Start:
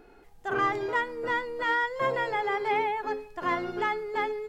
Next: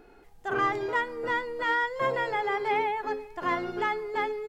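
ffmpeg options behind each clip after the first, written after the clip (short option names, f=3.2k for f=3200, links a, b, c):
-filter_complex "[0:a]asplit=2[a][b];[b]adelay=519,volume=-27dB,highshelf=f=4k:g=-11.7[c];[a][c]amix=inputs=2:normalize=0"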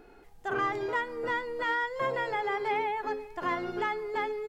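-af "acompressor=threshold=-31dB:ratio=1.5"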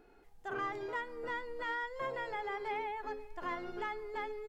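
-af "asubboost=boost=5.5:cutoff=54,volume=-8dB"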